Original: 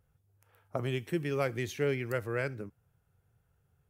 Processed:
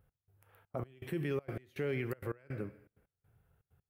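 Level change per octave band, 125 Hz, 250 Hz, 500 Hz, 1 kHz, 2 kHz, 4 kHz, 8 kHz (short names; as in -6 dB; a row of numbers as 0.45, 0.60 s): -4.5 dB, -4.0 dB, -6.0 dB, -8.5 dB, -8.0 dB, -10.5 dB, under -10 dB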